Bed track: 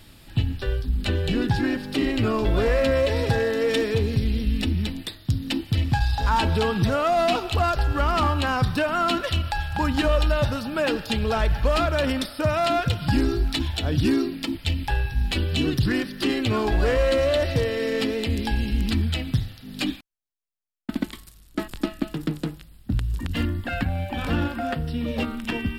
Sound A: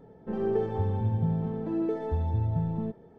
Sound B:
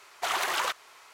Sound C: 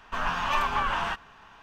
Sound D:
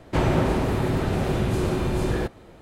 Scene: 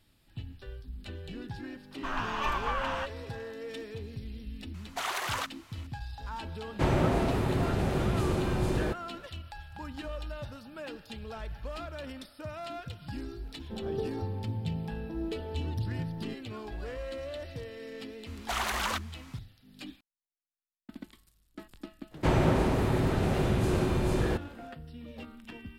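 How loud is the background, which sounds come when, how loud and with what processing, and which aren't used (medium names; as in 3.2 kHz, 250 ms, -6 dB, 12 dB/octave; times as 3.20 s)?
bed track -18 dB
1.91 s: add C -5.5 dB
4.74 s: add B -4.5 dB
6.66 s: add D -5 dB
13.43 s: add A -7 dB
18.26 s: add B -3 dB
22.10 s: add D -3.5 dB, fades 0.05 s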